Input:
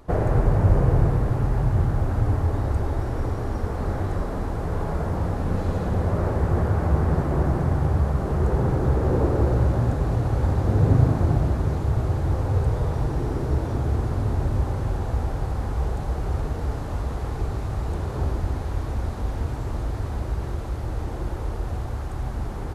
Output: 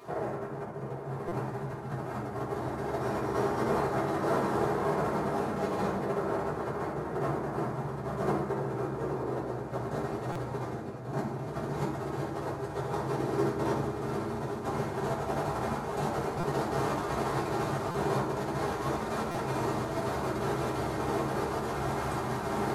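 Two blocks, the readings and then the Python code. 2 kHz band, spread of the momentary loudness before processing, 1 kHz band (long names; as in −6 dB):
+0.5 dB, 9 LU, +0.5 dB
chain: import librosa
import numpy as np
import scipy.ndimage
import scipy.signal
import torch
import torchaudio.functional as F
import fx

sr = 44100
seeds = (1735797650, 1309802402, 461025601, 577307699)

p1 = fx.over_compress(x, sr, threshold_db=-28.0, ratio=-1.0)
p2 = scipy.signal.sosfilt(scipy.signal.butter(2, 270.0, 'highpass', fs=sr, output='sos'), p1)
p3 = fx.peak_eq(p2, sr, hz=490.0, db=-3.0, octaves=0.39)
p4 = p3 + fx.echo_single(p3, sr, ms=815, db=-13.0, dry=0)
p5 = fx.rev_fdn(p4, sr, rt60_s=0.81, lf_ratio=1.1, hf_ratio=0.65, size_ms=44.0, drr_db=-6.0)
p6 = fx.buffer_glitch(p5, sr, at_s=(1.28, 10.32, 16.4, 17.91, 19.31), block=256, repeats=5)
y = p6 * librosa.db_to_amplitude(-4.0)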